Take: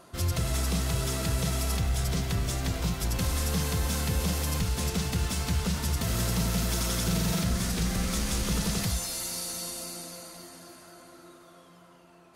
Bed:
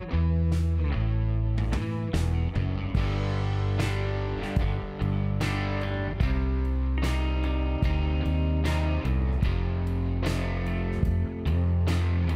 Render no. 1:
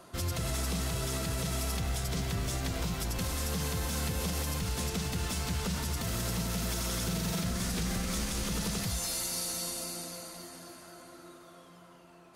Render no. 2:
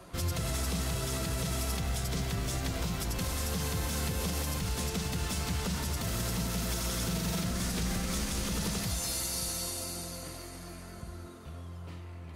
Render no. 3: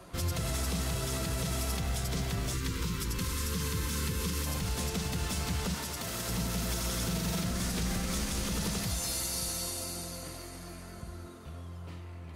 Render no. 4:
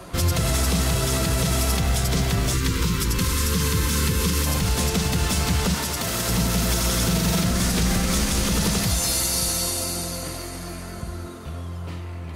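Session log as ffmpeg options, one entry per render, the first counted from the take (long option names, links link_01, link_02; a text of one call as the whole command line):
ffmpeg -i in.wav -filter_complex "[0:a]acrossover=split=160|3000[link_01][link_02][link_03];[link_01]acompressor=threshold=-30dB:ratio=6[link_04];[link_04][link_02][link_03]amix=inputs=3:normalize=0,alimiter=limit=-23.5dB:level=0:latency=1:release=100" out.wav
ffmpeg -i in.wav -i bed.wav -filter_complex "[1:a]volume=-19.5dB[link_01];[0:a][link_01]amix=inputs=2:normalize=0" out.wav
ffmpeg -i in.wav -filter_complex "[0:a]asettb=1/sr,asplit=3[link_01][link_02][link_03];[link_01]atrim=end=2.534[link_04];[link_02]atrim=start=2.53:end=4.46,asetpts=PTS-STARTPTS,afade=type=in:duration=0.004:curve=qsin,afade=type=out:start_time=1.926:duration=0.004:curve=qsin,asuperstop=centerf=680:order=8:qfactor=1.7[link_05];[link_03]atrim=start=4.456[link_06];[link_04][link_05]acrossfade=duration=0.004:curve1=hsin:curve2=qsin[link_07];[link_07][link_06]acrossfade=duration=0.004:curve1=qsin:curve2=hsin,asettb=1/sr,asplit=3[link_08][link_09][link_10];[link_08]atrim=end=5.744[link_11];[link_09]atrim=start=5.74:end=6.29,asetpts=PTS-STARTPTS,afade=type=in:duration=0.004:curve=qsin,afade=type=out:start_time=0.546:duration=0.004:curve=qsin,lowshelf=frequency=160:gain=-12[link_12];[link_10]atrim=start=6.286[link_13];[link_11][link_12]acrossfade=duration=0.004:curve1=hsin:curve2=qsin[link_14];[link_14][link_13]acrossfade=duration=0.004:curve1=qsin:curve2=hsin" out.wav
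ffmpeg -i in.wav -af "volume=11dB" out.wav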